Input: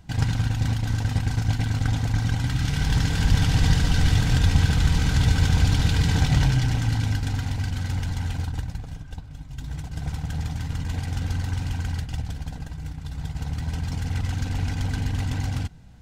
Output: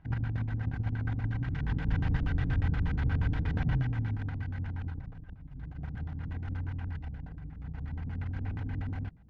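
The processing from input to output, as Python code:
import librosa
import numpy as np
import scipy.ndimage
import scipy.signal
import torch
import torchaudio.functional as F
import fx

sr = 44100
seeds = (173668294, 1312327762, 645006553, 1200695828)

y = fx.stretch_vocoder(x, sr, factor=0.58)
y = fx.filter_lfo_lowpass(y, sr, shape='square', hz=8.4, low_hz=320.0, high_hz=1800.0, q=1.5)
y = F.gain(torch.from_numpy(y), -8.0).numpy()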